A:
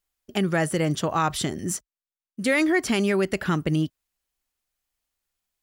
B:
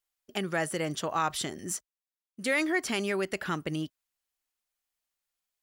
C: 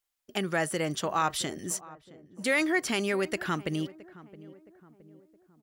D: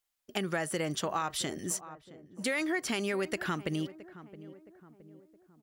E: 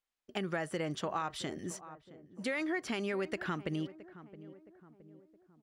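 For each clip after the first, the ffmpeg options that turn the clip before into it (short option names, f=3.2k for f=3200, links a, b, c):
-af "lowshelf=f=260:g=-11,volume=-4dB"
-filter_complex "[0:a]asplit=2[a][b];[b]adelay=668,lowpass=f=1k:p=1,volume=-17.5dB,asplit=2[c][d];[d]adelay=668,lowpass=f=1k:p=1,volume=0.52,asplit=2[e][f];[f]adelay=668,lowpass=f=1k:p=1,volume=0.52,asplit=2[g][h];[h]adelay=668,lowpass=f=1k:p=1,volume=0.52[i];[a][c][e][g][i]amix=inputs=5:normalize=0,volume=1.5dB"
-af "acompressor=threshold=-28dB:ratio=6"
-af "aemphasis=mode=reproduction:type=50fm,volume=-3dB"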